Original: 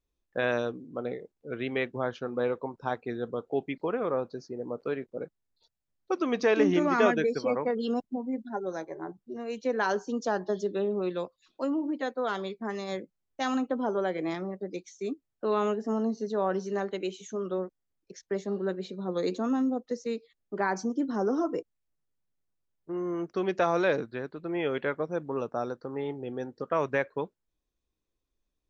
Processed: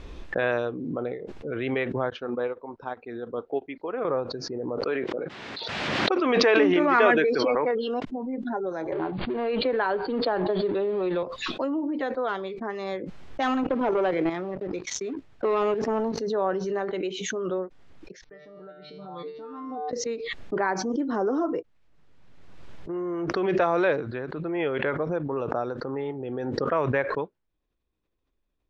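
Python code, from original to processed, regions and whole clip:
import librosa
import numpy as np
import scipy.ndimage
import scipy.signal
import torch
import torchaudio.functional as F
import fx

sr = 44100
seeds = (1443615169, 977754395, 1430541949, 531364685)

y = fx.chain(x, sr, fx.peak_eq(hz=150.0, db=-11.5, octaves=0.79),
    fx.upward_expand(threshold_db=-49.0, expansion=2.5), at=(2.1, 4.05))
y = fx.chain(y, sr, fx.bandpass_edges(low_hz=220.0, high_hz=3600.0),
    fx.high_shelf(hz=2100.0, db=8.5),
    fx.sustainer(db_per_s=25.0), at=(4.84, 8.05))
y = fx.chain(y, sr, fx.law_mismatch(coded='mu'),
    fx.cheby1_lowpass(hz=4700.0, order=10),
    fx.band_squash(depth_pct=70), at=(8.92, 11.23))
y = fx.chain(y, sr, fx.level_steps(step_db=10),
    fx.leveller(passes=2), at=(13.42, 16.2))
y = fx.chain(y, sr, fx.steep_lowpass(hz=5700.0, slope=96),
    fx.comb_fb(f0_hz=150.0, decay_s=0.46, harmonics='all', damping=0.0, mix_pct=100), at=(18.24, 19.93))
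y = scipy.signal.sosfilt(scipy.signal.butter(2, 3100.0, 'lowpass', fs=sr, output='sos'), y)
y = fx.dynamic_eq(y, sr, hz=210.0, q=2.9, threshold_db=-47.0, ratio=4.0, max_db=-8)
y = fx.pre_swell(y, sr, db_per_s=26.0)
y = F.gain(torch.from_numpy(y), 2.5).numpy()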